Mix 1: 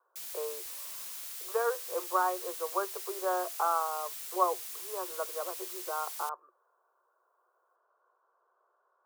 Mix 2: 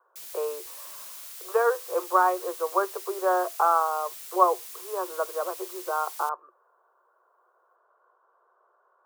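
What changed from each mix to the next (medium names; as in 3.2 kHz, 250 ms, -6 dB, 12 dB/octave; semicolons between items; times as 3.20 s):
speech +7.5 dB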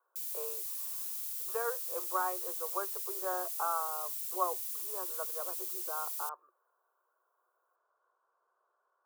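master: add pre-emphasis filter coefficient 0.8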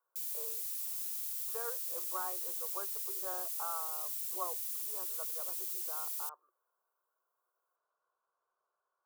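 speech -8.0 dB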